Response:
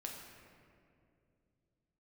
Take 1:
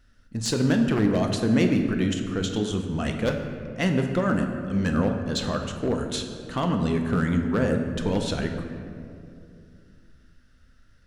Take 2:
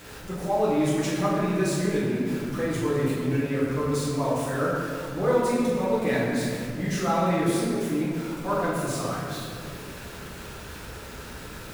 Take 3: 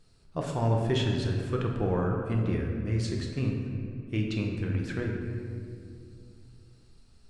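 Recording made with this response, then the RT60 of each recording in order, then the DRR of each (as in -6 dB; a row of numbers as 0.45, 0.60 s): 3; 2.5, 2.5, 2.5 s; 3.5, -9.0, -0.5 dB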